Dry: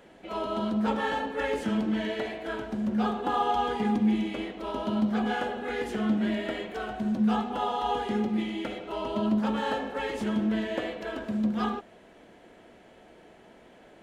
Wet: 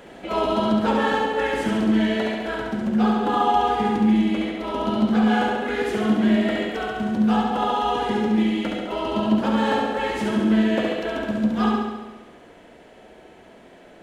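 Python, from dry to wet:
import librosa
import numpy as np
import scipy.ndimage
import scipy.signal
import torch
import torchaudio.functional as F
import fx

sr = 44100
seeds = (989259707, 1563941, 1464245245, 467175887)

p1 = fx.rider(x, sr, range_db=10, speed_s=2.0)
p2 = p1 + fx.room_flutter(p1, sr, wall_m=11.8, rt60_s=1.1, dry=0)
y = p2 * 10.0 ** (4.5 / 20.0)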